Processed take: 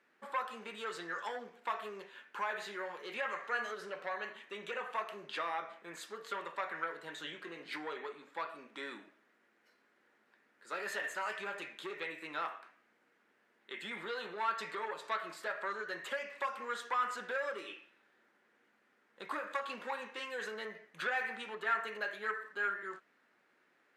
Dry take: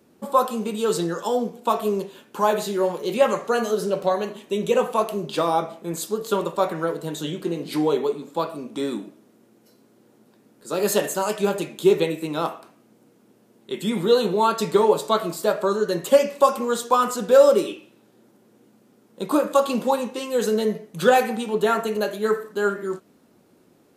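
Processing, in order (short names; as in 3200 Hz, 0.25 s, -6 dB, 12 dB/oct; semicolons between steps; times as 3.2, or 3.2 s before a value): compressor 2.5:1, threshold -22 dBFS, peak gain reduction 9.5 dB; soft clip -18 dBFS, distortion -16 dB; band-pass 1800 Hz, Q 3; gain +3 dB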